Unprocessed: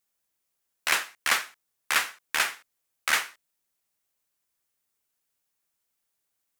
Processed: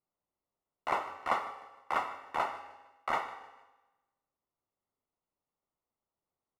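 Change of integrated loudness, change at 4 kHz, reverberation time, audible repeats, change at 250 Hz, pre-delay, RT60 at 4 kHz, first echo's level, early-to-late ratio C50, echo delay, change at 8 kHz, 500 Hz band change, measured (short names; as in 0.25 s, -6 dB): -9.0 dB, -19.5 dB, 1.1 s, 3, +0.5 dB, 5 ms, 1.0 s, -19.0 dB, 10.0 dB, 0.153 s, -27.0 dB, +3.5 dB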